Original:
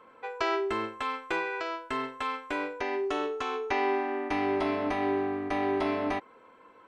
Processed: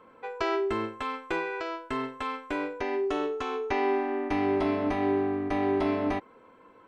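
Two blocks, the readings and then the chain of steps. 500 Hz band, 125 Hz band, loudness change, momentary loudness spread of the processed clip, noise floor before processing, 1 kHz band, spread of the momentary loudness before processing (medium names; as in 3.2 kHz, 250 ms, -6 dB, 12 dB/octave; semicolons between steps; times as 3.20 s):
+2.0 dB, +6.0 dB, +1.0 dB, 7 LU, -56 dBFS, -0.5 dB, 6 LU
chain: bass shelf 400 Hz +8.5 dB; trim -2 dB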